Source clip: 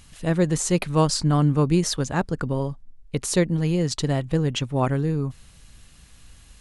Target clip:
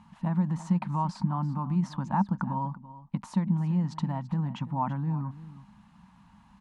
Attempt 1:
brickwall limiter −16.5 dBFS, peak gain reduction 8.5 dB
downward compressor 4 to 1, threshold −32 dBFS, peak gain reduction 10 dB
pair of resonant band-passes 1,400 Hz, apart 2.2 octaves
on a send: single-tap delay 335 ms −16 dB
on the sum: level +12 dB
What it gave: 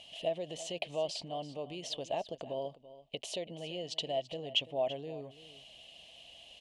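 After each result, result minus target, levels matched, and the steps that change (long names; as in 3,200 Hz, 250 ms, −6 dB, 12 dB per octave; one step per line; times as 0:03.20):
500 Hz band +18.0 dB; downward compressor: peak gain reduction +5 dB
change: pair of resonant band-passes 430 Hz, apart 2.2 octaves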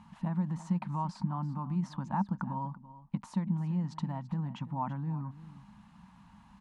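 downward compressor: peak gain reduction +5 dB
change: downward compressor 4 to 1, threshold −25 dBFS, peak gain reduction 5 dB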